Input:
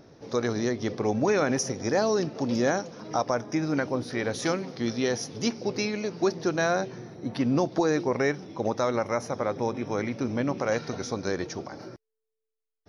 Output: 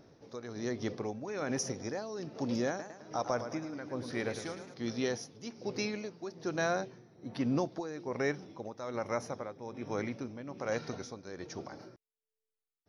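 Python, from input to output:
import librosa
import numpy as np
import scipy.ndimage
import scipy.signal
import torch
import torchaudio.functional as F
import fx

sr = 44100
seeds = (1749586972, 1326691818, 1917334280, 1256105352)

y = x * (1.0 - 0.73 / 2.0 + 0.73 / 2.0 * np.cos(2.0 * np.pi * 1.2 * (np.arange(len(x)) / sr)))
y = fx.echo_warbled(y, sr, ms=108, feedback_pct=52, rate_hz=2.8, cents=116, wet_db=-9.5, at=(2.68, 4.74))
y = y * 10.0 ** (-6.0 / 20.0)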